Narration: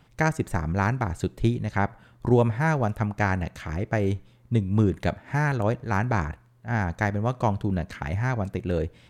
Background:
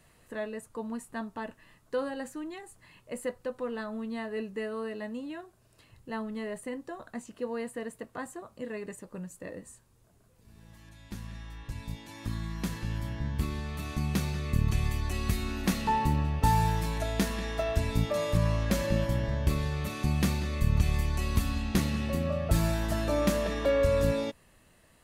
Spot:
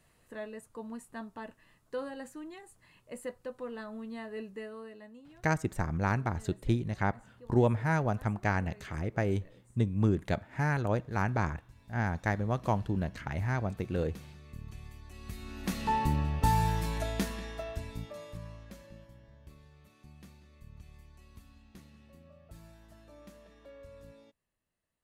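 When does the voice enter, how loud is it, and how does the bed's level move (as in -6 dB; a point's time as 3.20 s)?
5.25 s, -5.5 dB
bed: 4.50 s -5.5 dB
5.44 s -18.5 dB
15.06 s -18.5 dB
15.91 s -2 dB
17.03 s -2 dB
19.14 s -26.5 dB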